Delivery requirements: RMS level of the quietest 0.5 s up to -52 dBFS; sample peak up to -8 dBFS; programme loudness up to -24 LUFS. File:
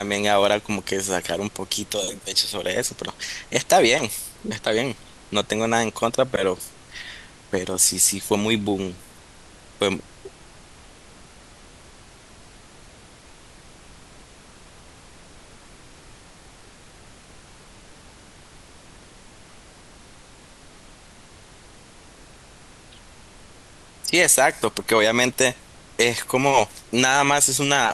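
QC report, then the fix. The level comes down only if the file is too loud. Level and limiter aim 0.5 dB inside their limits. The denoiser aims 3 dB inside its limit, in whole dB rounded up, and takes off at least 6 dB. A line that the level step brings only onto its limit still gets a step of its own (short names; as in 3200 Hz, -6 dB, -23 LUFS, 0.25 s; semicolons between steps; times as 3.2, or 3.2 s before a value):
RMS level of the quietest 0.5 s -47 dBFS: fail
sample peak -5.0 dBFS: fail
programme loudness -21.0 LUFS: fail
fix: denoiser 6 dB, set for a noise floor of -47 dBFS; gain -3.5 dB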